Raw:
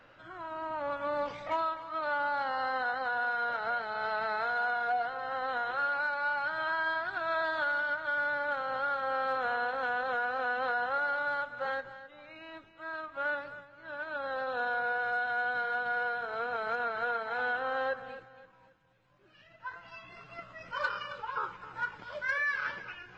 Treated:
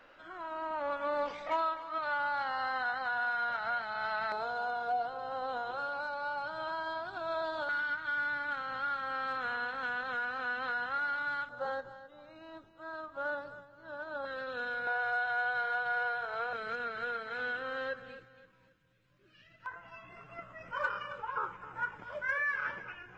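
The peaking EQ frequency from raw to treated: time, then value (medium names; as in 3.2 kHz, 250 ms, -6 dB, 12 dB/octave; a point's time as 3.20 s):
peaking EQ -15 dB 0.81 oct
120 Hz
from 1.98 s 400 Hz
from 4.32 s 1.9 kHz
from 7.69 s 620 Hz
from 11.49 s 2.3 kHz
from 14.25 s 810 Hz
from 14.87 s 280 Hz
from 16.53 s 820 Hz
from 19.66 s 4.3 kHz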